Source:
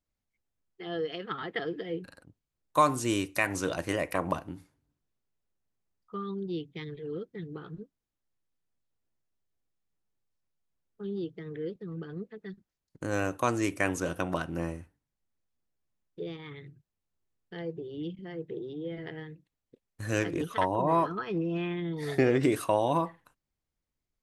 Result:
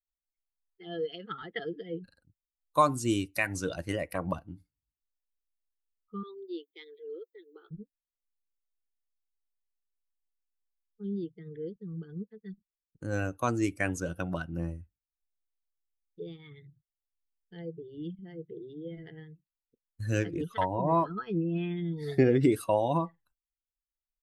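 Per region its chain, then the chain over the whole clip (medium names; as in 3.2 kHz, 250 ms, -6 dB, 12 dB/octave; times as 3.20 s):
6.23–7.71 s: elliptic high-pass 340 Hz, stop band 60 dB + treble shelf 7.2 kHz +10 dB
whole clip: expander on every frequency bin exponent 1.5; bass shelf 350 Hz +6 dB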